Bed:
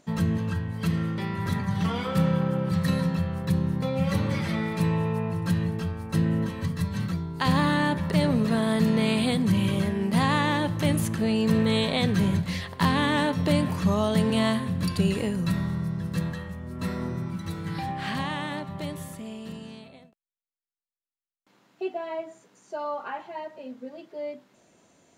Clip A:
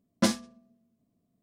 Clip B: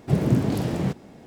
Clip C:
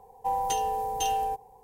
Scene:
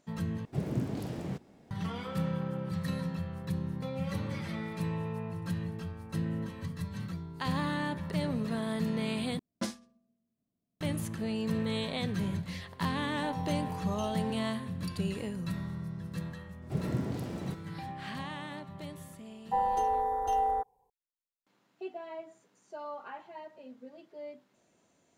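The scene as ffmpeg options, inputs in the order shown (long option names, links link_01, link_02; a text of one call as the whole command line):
ffmpeg -i bed.wav -i cue0.wav -i cue1.wav -i cue2.wav -filter_complex "[2:a]asplit=2[link_01][link_02];[3:a]asplit=2[link_03][link_04];[0:a]volume=-9.5dB[link_05];[link_03]lowpass=frequency=3900:poles=1[link_06];[link_04]afwtdn=0.0251[link_07];[link_05]asplit=3[link_08][link_09][link_10];[link_08]atrim=end=0.454[link_11];[link_01]atrim=end=1.26,asetpts=PTS-STARTPTS,volume=-12dB[link_12];[link_09]atrim=start=1.706:end=9.394[link_13];[1:a]atrim=end=1.42,asetpts=PTS-STARTPTS,volume=-11dB[link_14];[link_10]atrim=start=10.806[link_15];[link_06]atrim=end=1.63,asetpts=PTS-STARTPTS,volume=-12.5dB,afade=type=in:duration=0.004:curve=hsin,afade=type=out:start_time=1.626:duration=0.004:curve=hsin,adelay=12980[link_16];[link_02]atrim=end=1.26,asetpts=PTS-STARTPTS,volume=-12.5dB,afade=type=in:duration=0.004:curve=hsin,afade=type=out:start_time=1.256:duration=0.004:curve=hsin,adelay=16620[link_17];[link_07]atrim=end=1.63,asetpts=PTS-STARTPTS,volume=-0.5dB,afade=type=in:duration=0.004:curve=hsin,afade=type=out:start_time=1.626:duration=0.004:curve=hsin,adelay=19270[link_18];[link_11][link_12]acrossfade=duration=0.004:curve1=hsin:curve2=hsin[link_19];[link_19][link_13]acrossfade=duration=0.004:curve1=hsin:curve2=hsin[link_20];[link_20][link_14]acrossfade=duration=0.004:curve1=hsin:curve2=hsin[link_21];[link_21][link_15]acrossfade=duration=0.004:curve1=hsin:curve2=hsin[link_22];[link_22][link_16][link_17][link_18]amix=inputs=4:normalize=0" out.wav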